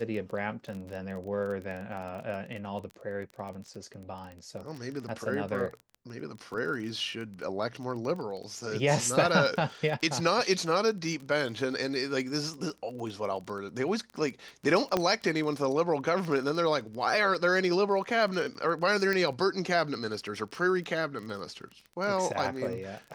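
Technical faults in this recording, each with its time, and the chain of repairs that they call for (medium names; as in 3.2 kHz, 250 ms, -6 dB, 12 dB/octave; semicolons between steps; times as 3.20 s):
crackle 21 per s -36 dBFS
14.97 s: pop -13 dBFS
19.13 s: pop -16 dBFS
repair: de-click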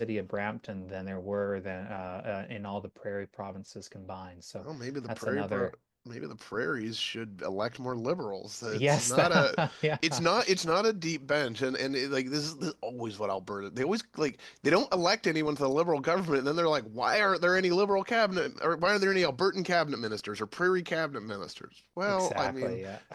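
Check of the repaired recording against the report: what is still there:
nothing left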